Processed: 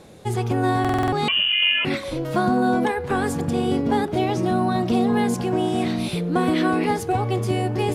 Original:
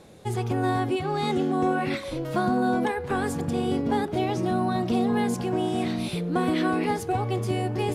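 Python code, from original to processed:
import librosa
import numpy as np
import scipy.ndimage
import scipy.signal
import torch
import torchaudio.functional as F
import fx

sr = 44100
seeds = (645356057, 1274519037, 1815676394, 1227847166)

y = fx.freq_invert(x, sr, carrier_hz=3200, at=(1.28, 1.85))
y = fx.buffer_glitch(y, sr, at_s=(0.8,), block=2048, repeats=6)
y = y * 10.0 ** (4.0 / 20.0)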